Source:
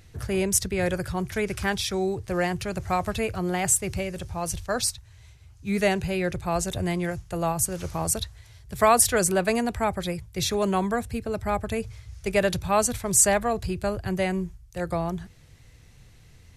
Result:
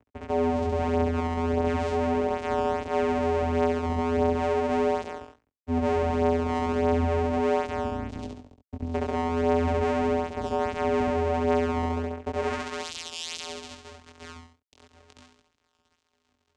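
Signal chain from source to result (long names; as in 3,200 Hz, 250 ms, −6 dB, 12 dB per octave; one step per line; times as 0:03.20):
time-frequency box erased 0:07.59–0:08.94, 280–3,200 Hz
reversed playback
downward compressor 20 to 1, threshold −34 dBFS, peak gain reduction 21 dB
reversed playback
hard clipping −33.5 dBFS, distortion −15 dB
on a send: flutter between parallel walls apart 11.7 metres, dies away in 1.4 s
on the sum: band-pass filter sweep 650 Hz → 5,700 Hz, 0:12.19–0:13.00
fuzz pedal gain 52 dB, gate −59 dBFS
channel vocoder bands 4, square 83.3 Hz
chorus effect 0.38 Hz, delay 17.5 ms, depth 7.5 ms
level −6 dB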